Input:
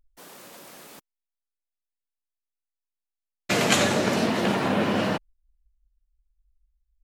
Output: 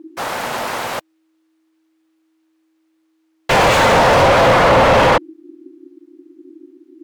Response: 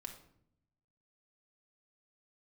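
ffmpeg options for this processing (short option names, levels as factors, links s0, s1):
-filter_complex "[0:a]aeval=exprs='val(0)*sin(2*PI*320*n/s)':c=same,asplit=2[s0][s1];[s1]highpass=f=720:p=1,volume=70.8,asoftclip=type=tanh:threshold=0.501[s2];[s0][s2]amix=inputs=2:normalize=0,lowpass=f=1200:p=1,volume=0.501,volume=1.68"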